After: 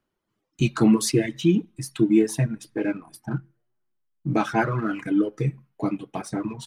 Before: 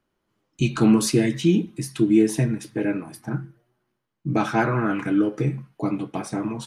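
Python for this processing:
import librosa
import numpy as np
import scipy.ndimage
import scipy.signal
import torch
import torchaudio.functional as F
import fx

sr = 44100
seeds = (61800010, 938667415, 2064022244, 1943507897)

p1 = fx.dereverb_blind(x, sr, rt60_s=1.7)
p2 = fx.backlash(p1, sr, play_db=-34.5)
p3 = p1 + (p2 * 10.0 ** (-7.5 / 20.0))
y = p3 * 10.0 ** (-3.0 / 20.0)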